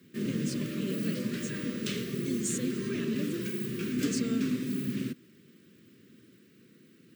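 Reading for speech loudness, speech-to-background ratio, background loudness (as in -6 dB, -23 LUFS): -38.0 LUFS, -5.0 dB, -33.0 LUFS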